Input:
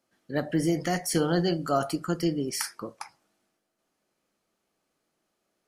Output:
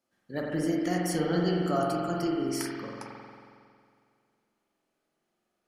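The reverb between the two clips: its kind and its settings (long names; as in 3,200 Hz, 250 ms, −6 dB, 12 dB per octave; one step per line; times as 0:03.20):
spring reverb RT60 2.2 s, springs 45 ms, chirp 45 ms, DRR −2 dB
level −6 dB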